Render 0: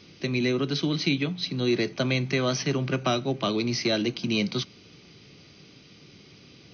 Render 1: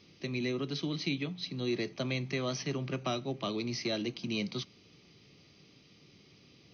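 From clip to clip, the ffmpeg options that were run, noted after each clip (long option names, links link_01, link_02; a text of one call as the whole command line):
ffmpeg -i in.wav -af "bandreject=frequency=1500:width=10,volume=-8.5dB" out.wav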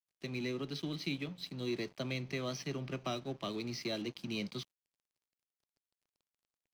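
ffmpeg -i in.wav -af "aeval=exprs='sgn(val(0))*max(abs(val(0))-0.00282,0)':channel_layout=same,volume=-3.5dB" out.wav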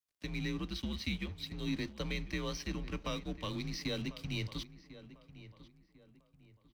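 ffmpeg -i in.wav -filter_complex "[0:a]adynamicequalizer=threshold=0.00178:dfrequency=720:dqfactor=1.9:tfrequency=720:tqfactor=1.9:attack=5:release=100:ratio=0.375:range=2:mode=cutabove:tftype=bell,afreqshift=-89,asplit=2[link_01][link_02];[link_02]adelay=1047,lowpass=frequency=2200:poles=1,volume=-15dB,asplit=2[link_03][link_04];[link_04]adelay=1047,lowpass=frequency=2200:poles=1,volume=0.35,asplit=2[link_05][link_06];[link_06]adelay=1047,lowpass=frequency=2200:poles=1,volume=0.35[link_07];[link_01][link_03][link_05][link_07]amix=inputs=4:normalize=0,volume=1dB" out.wav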